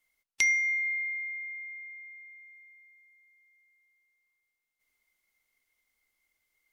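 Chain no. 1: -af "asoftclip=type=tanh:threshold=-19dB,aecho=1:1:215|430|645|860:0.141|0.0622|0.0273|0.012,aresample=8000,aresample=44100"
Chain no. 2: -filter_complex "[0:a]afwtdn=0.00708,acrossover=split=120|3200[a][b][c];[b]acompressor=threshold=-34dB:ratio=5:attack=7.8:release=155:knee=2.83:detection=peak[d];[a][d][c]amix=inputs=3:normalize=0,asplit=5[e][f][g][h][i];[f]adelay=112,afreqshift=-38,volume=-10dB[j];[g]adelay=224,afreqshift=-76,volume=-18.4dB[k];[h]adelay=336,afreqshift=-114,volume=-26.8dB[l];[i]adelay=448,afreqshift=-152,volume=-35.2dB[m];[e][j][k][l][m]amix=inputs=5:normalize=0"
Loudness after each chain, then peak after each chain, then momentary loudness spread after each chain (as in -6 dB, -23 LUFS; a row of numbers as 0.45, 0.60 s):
-30.0, -32.0 LUFS; -20.5, -6.5 dBFS; 20, 17 LU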